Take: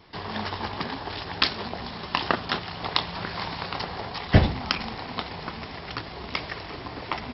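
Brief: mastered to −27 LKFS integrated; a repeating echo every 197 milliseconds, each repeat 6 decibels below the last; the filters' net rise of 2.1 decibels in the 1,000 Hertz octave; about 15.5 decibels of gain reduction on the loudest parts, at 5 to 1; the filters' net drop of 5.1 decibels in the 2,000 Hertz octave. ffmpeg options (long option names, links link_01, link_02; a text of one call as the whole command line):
ffmpeg -i in.wav -af "equalizer=frequency=1000:width_type=o:gain=4.5,equalizer=frequency=2000:width_type=o:gain=-8,acompressor=threshold=-29dB:ratio=5,aecho=1:1:197|394|591|788|985|1182:0.501|0.251|0.125|0.0626|0.0313|0.0157,volume=6.5dB" out.wav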